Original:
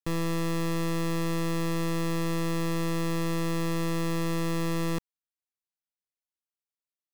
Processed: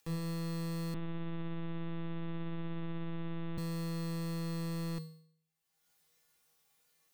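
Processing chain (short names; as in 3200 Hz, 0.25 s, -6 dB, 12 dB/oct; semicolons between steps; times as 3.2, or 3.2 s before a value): upward compressor, threshold -37 dBFS; resonator 160 Hz, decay 0.62 s, harmonics odd, mix 90%; 0.94–3.58 LPC vocoder at 8 kHz pitch kept; gain +5 dB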